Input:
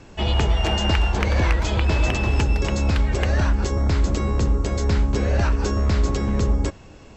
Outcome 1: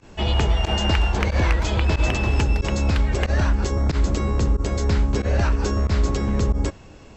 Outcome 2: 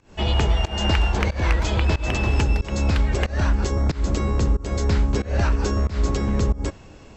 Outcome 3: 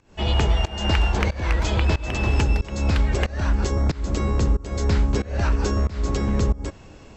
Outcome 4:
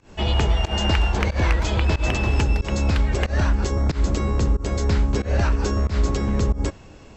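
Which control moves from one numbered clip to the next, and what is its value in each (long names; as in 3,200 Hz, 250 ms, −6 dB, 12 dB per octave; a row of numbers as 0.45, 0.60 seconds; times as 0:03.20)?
fake sidechain pumping, release: 61, 229, 364, 142 milliseconds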